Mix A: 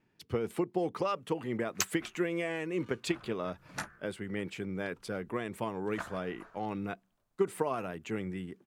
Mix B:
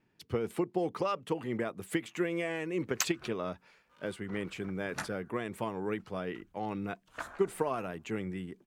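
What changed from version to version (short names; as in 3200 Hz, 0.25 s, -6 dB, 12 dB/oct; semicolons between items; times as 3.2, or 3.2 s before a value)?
background: entry +1.20 s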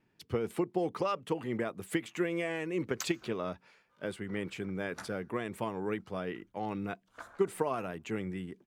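background -9.0 dB; reverb: on, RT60 0.85 s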